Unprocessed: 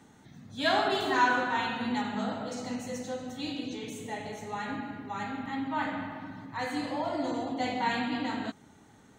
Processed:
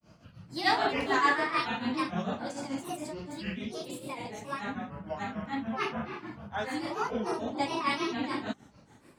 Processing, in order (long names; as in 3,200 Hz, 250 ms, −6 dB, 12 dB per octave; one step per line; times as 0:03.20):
granular cloud 224 ms, grains 6.8 per second, spray 16 ms, pitch spread up and down by 7 semitones
level +2 dB